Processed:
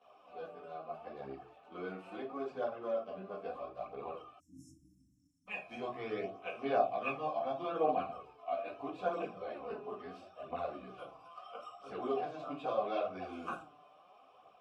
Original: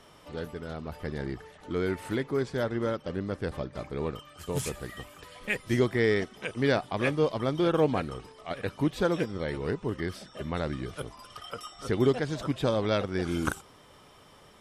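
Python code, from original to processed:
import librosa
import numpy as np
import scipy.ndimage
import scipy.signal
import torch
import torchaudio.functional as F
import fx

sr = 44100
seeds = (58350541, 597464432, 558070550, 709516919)

y = fx.vowel_filter(x, sr, vowel='a')
y = fx.room_shoebox(y, sr, seeds[0], volume_m3=210.0, walls='furnished', distance_m=1.9)
y = fx.chorus_voices(y, sr, voices=2, hz=0.38, base_ms=14, depth_ms=3.5, mix_pct=70)
y = fx.spec_erase(y, sr, start_s=4.39, length_s=1.08, low_hz=330.0, high_hz=5200.0)
y = F.gain(torch.from_numpy(y), 3.0).numpy()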